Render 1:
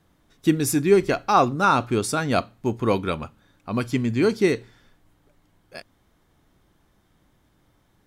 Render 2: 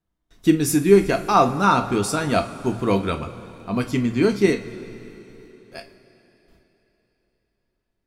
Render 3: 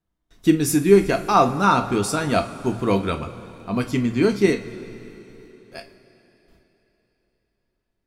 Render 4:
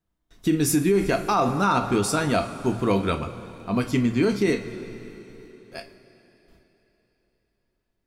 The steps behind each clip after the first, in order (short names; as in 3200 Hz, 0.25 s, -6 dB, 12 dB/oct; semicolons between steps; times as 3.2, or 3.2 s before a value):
gate with hold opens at -50 dBFS; low shelf 66 Hz +9.5 dB; two-slope reverb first 0.24 s, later 3.8 s, from -20 dB, DRR 4.5 dB
nothing audible
limiter -12 dBFS, peak gain reduction 10.5 dB